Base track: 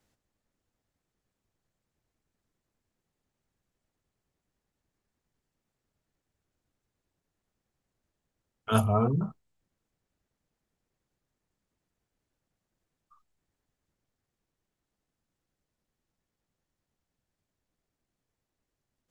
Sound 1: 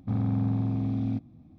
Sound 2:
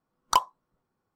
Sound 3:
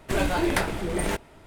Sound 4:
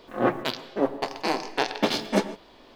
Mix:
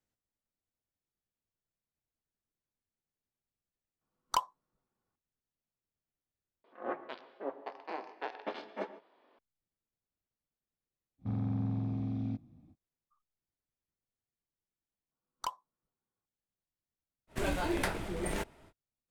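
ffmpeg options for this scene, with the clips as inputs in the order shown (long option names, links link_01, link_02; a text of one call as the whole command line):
ffmpeg -i bed.wav -i cue0.wav -i cue1.wav -i cue2.wav -i cue3.wav -filter_complex "[2:a]asplit=2[link_01][link_02];[0:a]volume=-14.5dB[link_03];[4:a]highpass=400,lowpass=2000[link_04];[link_03]asplit=3[link_05][link_06][link_07];[link_05]atrim=end=6.644[link_08];[link_04]atrim=end=2.75,asetpts=PTS-STARTPTS,volume=-12.5dB[link_09];[link_06]atrim=start=9.386:end=15.114[link_10];[link_02]atrim=end=1.15,asetpts=PTS-STARTPTS,volume=-15.5dB[link_11];[link_07]atrim=start=16.256[link_12];[link_01]atrim=end=1.15,asetpts=PTS-STARTPTS,volume=-8.5dB,afade=type=in:duration=0.004:curve=hsin,afade=type=out:start_time=1.146:duration=0.004:curve=hsin,adelay=176841S[link_13];[1:a]atrim=end=1.58,asetpts=PTS-STARTPTS,volume=-7dB,afade=type=in:duration=0.05,afade=type=out:start_time=1.53:duration=0.05,adelay=11180[link_14];[3:a]atrim=end=1.46,asetpts=PTS-STARTPTS,volume=-8.5dB,afade=type=in:duration=0.05,afade=type=out:start_time=1.41:duration=0.05,adelay=17270[link_15];[link_08][link_09]acrossfade=duration=0.004:curve1=hsin:curve2=hsin[link_16];[link_16][link_10]acrossfade=duration=0.004:curve1=hsin:curve2=hsin[link_17];[link_17][link_11]acrossfade=duration=0.004:curve1=hsin:curve2=hsin[link_18];[link_18][link_12]acrossfade=duration=0.004:curve1=hsin:curve2=hsin[link_19];[link_19][link_13][link_14][link_15]amix=inputs=4:normalize=0" out.wav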